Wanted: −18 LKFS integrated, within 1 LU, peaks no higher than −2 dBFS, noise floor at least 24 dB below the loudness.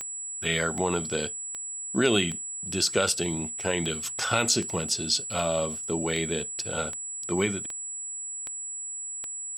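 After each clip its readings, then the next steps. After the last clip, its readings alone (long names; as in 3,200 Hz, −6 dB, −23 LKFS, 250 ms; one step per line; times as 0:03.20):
number of clicks 13; interfering tone 7,800 Hz; level of the tone −33 dBFS; integrated loudness −27.5 LKFS; sample peak −7.0 dBFS; target loudness −18.0 LKFS
→ click removal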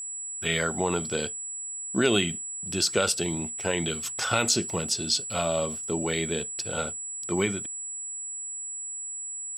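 number of clicks 0; interfering tone 7,800 Hz; level of the tone −33 dBFS
→ notch filter 7,800 Hz, Q 30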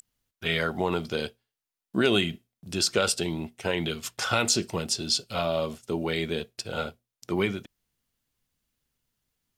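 interfering tone none found; integrated loudness −28.0 LKFS; sample peak −7.5 dBFS; target loudness −18.0 LKFS
→ level +10 dB
brickwall limiter −2 dBFS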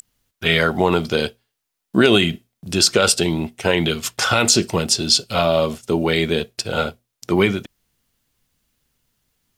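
integrated loudness −18.5 LKFS; sample peak −2.0 dBFS; background noise floor −79 dBFS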